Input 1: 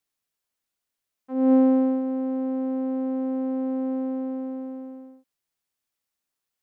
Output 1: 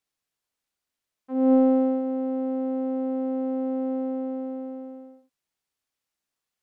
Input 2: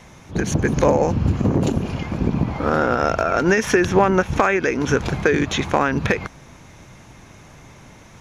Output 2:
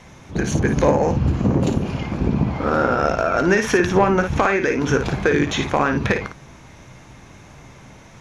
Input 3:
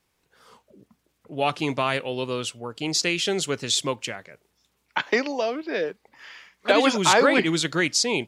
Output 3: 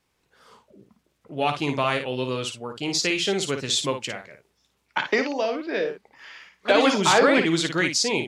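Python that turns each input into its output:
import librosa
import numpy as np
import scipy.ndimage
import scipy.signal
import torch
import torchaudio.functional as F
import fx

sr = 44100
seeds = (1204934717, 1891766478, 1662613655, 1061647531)

y = fx.high_shelf(x, sr, hz=11000.0, db=-8.0)
y = 10.0 ** (-4.5 / 20.0) * np.tanh(y / 10.0 ** (-4.5 / 20.0))
y = fx.room_early_taps(y, sr, ms=(15, 55), db=(-14.5, -7.5))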